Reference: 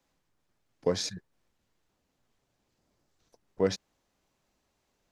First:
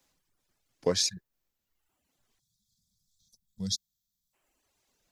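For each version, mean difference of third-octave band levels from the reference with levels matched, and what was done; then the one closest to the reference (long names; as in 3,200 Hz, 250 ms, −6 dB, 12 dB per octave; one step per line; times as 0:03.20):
7.0 dB: gain on a spectral selection 0:02.40–0:04.34, 230–3,200 Hz −25 dB
reverb reduction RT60 1.1 s
high-shelf EQ 3,100 Hz +10 dB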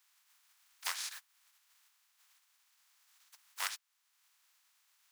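21.0 dB: compressing power law on the bin magnitudes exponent 0.29
downward compressor 1.5 to 1, threshold −58 dBFS, peak gain reduction 13.5 dB
high-pass filter 1,000 Hz 24 dB per octave
level +4.5 dB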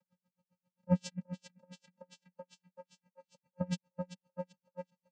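10.0 dB: channel vocoder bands 8, square 180 Hz
on a send: feedback echo with a high-pass in the loop 380 ms, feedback 71%, high-pass 220 Hz, level −8.5 dB
on the sum: tremolo with a sine in dB 7.5 Hz, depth 37 dB
level +5.5 dB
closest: first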